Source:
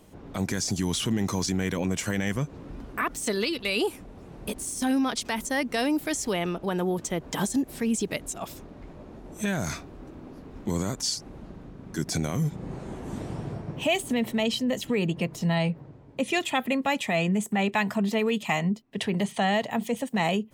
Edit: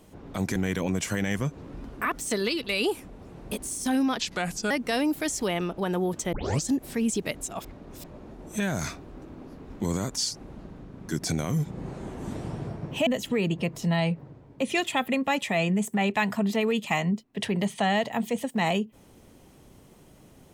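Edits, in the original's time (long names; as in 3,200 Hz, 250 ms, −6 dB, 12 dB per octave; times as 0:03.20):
0:00.56–0:01.52: remove
0:05.16–0:05.56: play speed 79%
0:07.18: tape start 0.35 s
0:08.50–0:08.89: reverse
0:13.92–0:14.65: remove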